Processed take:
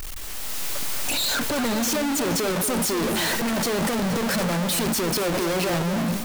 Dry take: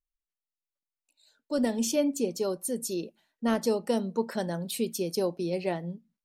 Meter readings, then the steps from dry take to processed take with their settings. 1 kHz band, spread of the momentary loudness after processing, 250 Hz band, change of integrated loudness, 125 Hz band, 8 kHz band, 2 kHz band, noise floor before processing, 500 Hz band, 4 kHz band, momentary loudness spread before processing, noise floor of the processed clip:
+10.5 dB, 5 LU, +5.5 dB, +6.5 dB, +10.5 dB, +11.0 dB, +15.5 dB, below −85 dBFS, +3.5 dB, +14.0 dB, 7 LU, −31 dBFS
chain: sign of each sample alone
automatic gain control gain up to 7 dB
on a send: delay that swaps between a low-pass and a high-pass 236 ms, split 1,700 Hz, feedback 50%, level −8 dB

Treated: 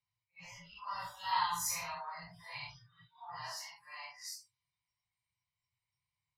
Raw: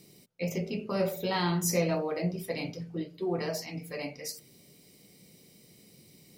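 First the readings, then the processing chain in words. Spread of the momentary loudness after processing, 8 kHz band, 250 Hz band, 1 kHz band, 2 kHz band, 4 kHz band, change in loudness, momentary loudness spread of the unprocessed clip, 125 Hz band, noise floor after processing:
18 LU, −4.0 dB, −30.0 dB, +0.5 dB, −5.0 dB, −4.5 dB, −7.5 dB, 11 LU, −23.5 dB, below −85 dBFS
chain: random phases in long frames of 200 ms
elliptic band-stop filter 110–910 Hz, stop band 80 dB
noise reduction from a noise print of the clip's start 20 dB
low-pass that shuts in the quiet parts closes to 2,500 Hz, open at −34.5 dBFS
parametric band 1,000 Hz +12.5 dB 0.22 octaves
level −3.5 dB

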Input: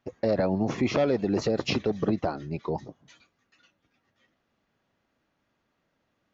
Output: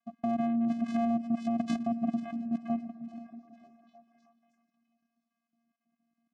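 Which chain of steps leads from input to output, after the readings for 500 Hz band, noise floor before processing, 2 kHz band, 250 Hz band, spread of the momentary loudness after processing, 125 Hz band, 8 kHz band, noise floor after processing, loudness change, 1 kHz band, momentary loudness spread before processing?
−12.5 dB, −76 dBFS, −12.5 dB, 0.0 dB, 15 LU, −13.0 dB, can't be measured, below −85 dBFS, −4.0 dB, −1.5 dB, 8 LU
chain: time-frequency cells dropped at random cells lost 31%
channel vocoder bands 4, square 232 Hz
repeating echo 491 ms, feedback 38%, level −18 dB
output level in coarse steps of 10 dB
echo through a band-pass that steps 313 ms, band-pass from 170 Hz, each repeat 0.7 octaves, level −10 dB
level +1.5 dB

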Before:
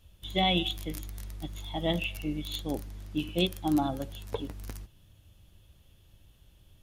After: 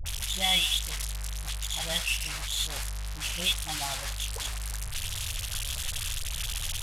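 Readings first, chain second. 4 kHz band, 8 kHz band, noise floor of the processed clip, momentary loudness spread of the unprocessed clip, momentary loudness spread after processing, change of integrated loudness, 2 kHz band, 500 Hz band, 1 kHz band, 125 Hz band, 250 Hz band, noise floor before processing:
+6.5 dB, +19.0 dB, −36 dBFS, 15 LU, 10 LU, +2.0 dB, +6.0 dB, −9.5 dB, −3.5 dB, −0.5 dB, −16.0 dB, −61 dBFS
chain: linear delta modulator 64 kbit/s, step −27.5 dBFS
guitar amp tone stack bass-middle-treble 10-0-10
all-pass dispersion highs, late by 61 ms, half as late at 710 Hz
level +7 dB

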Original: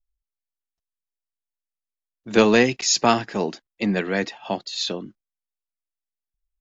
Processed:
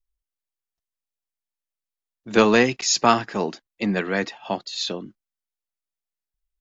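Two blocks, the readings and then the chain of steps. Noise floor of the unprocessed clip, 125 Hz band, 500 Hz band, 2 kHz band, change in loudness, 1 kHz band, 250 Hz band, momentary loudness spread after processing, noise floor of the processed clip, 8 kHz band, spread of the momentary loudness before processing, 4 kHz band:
below −85 dBFS, −1.0 dB, −0.5 dB, +0.5 dB, −0.5 dB, +2.0 dB, −1.0 dB, 12 LU, below −85 dBFS, can't be measured, 12 LU, −1.0 dB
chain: dynamic equaliser 1,200 Hz, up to +5 dB, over −37 dBFS, Q 1.8
level −1 dB

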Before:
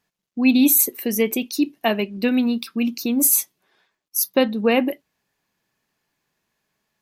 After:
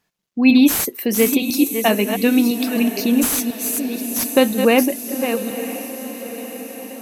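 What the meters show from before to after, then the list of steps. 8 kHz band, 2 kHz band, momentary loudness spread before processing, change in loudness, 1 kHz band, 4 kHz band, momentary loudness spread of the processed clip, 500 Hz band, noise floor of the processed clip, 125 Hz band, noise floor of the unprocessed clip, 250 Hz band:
0.0 dB, +4.5 dB, 10 LU, +2.0 dB, +4.5 dB, +4.5 dB, 15 LU, +4.5 dB, −58 dBFS, can't be measured, −82 dBFS, +4.5 dB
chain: delay that plays each chunk backwards 501 ms, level −8 dB
feedback delay with all-pass diffusion 958 ms, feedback 59%, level −12 dB
slew-rate limiting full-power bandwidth 670 Hz
level +3.5 dB

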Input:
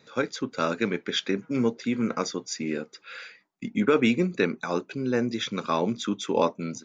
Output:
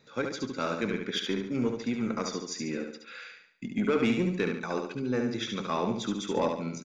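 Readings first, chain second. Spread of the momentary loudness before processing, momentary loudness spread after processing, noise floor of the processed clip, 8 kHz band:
10 LU, 10 LU, −54 dBFS, can't be measured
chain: low-shelf EQ 63 Hz +12 dB
soft clipping −13.5 dBFS, distortion −20 dB
on a send: repeating echo 71 ms, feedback 43%, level −5 dB
on the sum: level −4.5 dB

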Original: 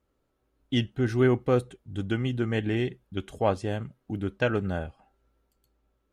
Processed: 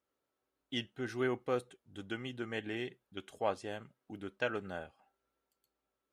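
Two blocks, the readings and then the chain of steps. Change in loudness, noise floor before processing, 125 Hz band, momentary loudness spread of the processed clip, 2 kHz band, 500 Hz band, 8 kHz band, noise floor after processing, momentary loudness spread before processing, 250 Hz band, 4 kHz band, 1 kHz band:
−11.0 dB, −75 dBFS, −19.5 dB, 14 LU, −6.5 dB, −10.0 dB, can't be measured, below −85 dBFS, 13 LU, −13.0 dB, −6.0 dB, −7.5 dB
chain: high-pass filter 560 Hz 6 dB per octave
level −6 dB

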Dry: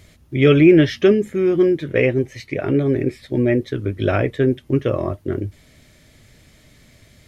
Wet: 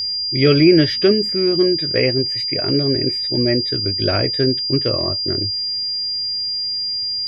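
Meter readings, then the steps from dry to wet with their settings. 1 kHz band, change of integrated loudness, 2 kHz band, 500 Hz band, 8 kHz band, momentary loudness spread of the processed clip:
−1.0 dB, +1.0 dB, −1.0 dB, −1.0 dB, can't be measured, 7 LU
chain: steady tone 4,800 Hz −19 dBFS
level −1 dB

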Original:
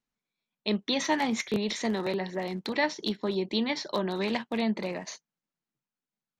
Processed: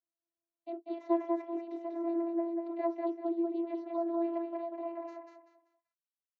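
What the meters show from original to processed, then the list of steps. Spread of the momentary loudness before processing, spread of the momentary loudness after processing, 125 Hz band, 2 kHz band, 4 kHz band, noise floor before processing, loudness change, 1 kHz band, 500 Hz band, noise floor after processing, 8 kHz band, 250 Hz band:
7 LU, 11 LU, below −40 dB, below −20 dB, below −30 dB, below −85 dBFS, −5.0 dB, −5.5 dB, −3.5 dB, below −85 dBFS, below −35 dB, −3.5 dB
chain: band-pass filter sweep 510 Hz → 3,800 Hz, 0:04.70–0:05.59
channel vocoder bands 32, saw 337 Hz
repeating echo 193 ms, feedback 31%, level −3.5 dB

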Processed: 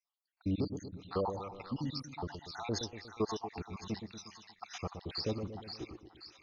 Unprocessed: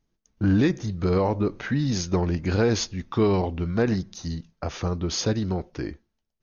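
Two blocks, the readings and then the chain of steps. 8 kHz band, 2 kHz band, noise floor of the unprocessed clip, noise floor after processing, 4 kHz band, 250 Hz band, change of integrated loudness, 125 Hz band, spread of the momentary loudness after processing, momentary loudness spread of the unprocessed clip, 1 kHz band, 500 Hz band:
can't be measured, −16.5 dB, −77 dBFS, below −85 dBFS, −9.0 dB, −15.0 dB, −14.5 dB, −16.5 dB, 12 LU, 11 LU, −9.5 dB, −14.0 dB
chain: time-frequency cells dropped at random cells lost 76%
low-shelf EQ 470 Hz −8.5 dB
echo with a time of its own for lows and highs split 1,000 Hz, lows 119 ms, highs 529 ms, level −7.5 dB
level −5 dB

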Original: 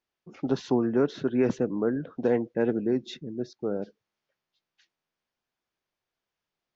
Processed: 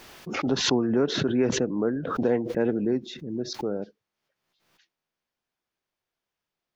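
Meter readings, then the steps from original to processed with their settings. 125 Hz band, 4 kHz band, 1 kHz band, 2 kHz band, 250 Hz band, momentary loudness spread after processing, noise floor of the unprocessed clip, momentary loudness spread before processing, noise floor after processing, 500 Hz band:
+2.5 dB, +14.0 dB, +4.0 dB, +6.0 dB, +1.5 dB, 10 LU, below −85 dBFS, 10 LU, below −85 dBFS, +0.5 dB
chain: background raised ahead of every attack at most 54 dB per second

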